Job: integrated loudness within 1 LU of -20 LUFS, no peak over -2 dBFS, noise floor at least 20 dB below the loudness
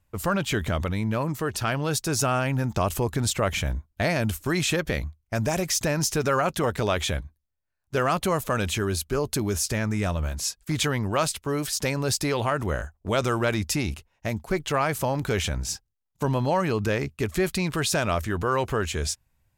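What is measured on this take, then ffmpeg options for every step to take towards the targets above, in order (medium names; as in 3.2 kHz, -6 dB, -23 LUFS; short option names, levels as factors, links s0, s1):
loudness -26.0 LUFS; peak level -11.5 dBFS; loudness target -20.0 LUFS
-> -af "volume=2"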